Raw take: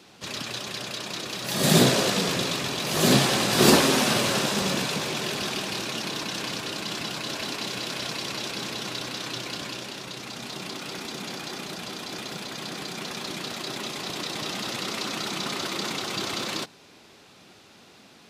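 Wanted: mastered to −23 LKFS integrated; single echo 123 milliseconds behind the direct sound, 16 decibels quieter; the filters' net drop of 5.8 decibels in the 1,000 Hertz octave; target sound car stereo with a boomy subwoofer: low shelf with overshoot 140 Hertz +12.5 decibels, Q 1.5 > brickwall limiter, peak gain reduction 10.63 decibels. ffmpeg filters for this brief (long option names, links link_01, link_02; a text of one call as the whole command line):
ffmpeg -i in.wav -af "lowshelf=frequency=140:width_type=q:width=1.5:gain=12.5,equalizer=frequency=1000:width_type=o:gain=-7.5,aecho=1:1:123:0.158,volume=6dB,alimiter=limit=-9.5dB:level=0:latency=1" out.wav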